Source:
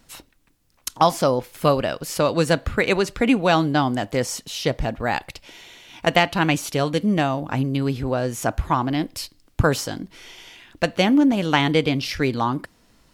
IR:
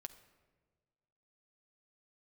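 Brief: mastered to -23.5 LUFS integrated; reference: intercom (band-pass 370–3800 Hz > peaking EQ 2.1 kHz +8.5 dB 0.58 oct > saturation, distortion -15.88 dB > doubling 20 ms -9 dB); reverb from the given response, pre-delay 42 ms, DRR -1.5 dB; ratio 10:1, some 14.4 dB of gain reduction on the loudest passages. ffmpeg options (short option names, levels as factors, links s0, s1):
-filter_complex "[0:a]acompressor=threshold=0.0501:ratio=10,asplit=2[s0][s1];[1:a]atrim=start_sample=2205,adelay=42[s2];[s1][s2]afir=irnorm=-1:irlink=0,volume=2.11[s3];[s0][s3]amix=inputs=2:normalize=0,highpass=370,lowpass=3800,equalizer=f=2100:t=o:w=0.58:g=8.5,asoftclip=threshold=0.119,asplit=2[s4][s5];[s5]adelay=20,volume=0.355[s6];[s4][s6]amix=inputs=2:normalize=0,volume=2.11"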